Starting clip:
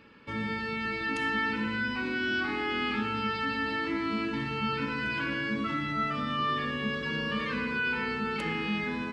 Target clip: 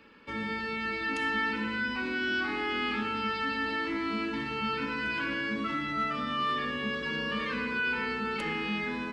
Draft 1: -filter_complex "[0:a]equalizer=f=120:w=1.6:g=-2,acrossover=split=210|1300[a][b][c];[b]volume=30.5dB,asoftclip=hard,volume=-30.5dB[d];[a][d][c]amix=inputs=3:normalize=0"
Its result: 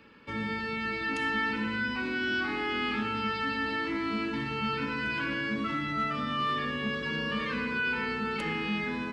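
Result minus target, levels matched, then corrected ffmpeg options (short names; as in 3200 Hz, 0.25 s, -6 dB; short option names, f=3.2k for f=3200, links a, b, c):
125 Hz band +4.0 dB
-filter_complex "[0:a]equalizer=f=120:w=1.6:g=-10,acrossover=split=210|1300[a][b][c];[b]volume=30.5dB,asoftclip=hard,volume=-30.5dB[d];[a][d][c]amix=inputs=3:normalize=0"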